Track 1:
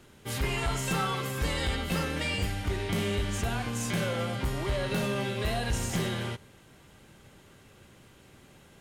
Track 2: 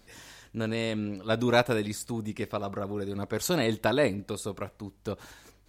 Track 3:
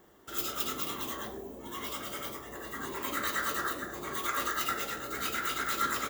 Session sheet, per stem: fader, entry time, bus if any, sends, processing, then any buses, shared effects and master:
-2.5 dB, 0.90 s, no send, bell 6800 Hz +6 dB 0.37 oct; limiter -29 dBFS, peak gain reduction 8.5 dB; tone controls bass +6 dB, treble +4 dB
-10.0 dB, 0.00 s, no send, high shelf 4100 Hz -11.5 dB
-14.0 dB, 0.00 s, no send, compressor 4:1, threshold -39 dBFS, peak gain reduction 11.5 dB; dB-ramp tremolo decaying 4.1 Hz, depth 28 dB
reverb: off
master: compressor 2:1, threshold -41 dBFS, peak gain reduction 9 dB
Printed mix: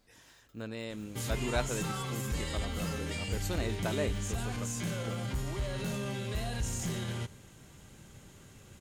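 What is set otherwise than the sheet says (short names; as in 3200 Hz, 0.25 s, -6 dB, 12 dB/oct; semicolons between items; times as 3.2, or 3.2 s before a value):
stem 2: missing high shelf 4100 Hz -11.5 dB; stem 3 -14.0 dB -> -21.0 dB; master: missing compressor 2:1, threshold -41 dBFS, peak gain reduction 9 dB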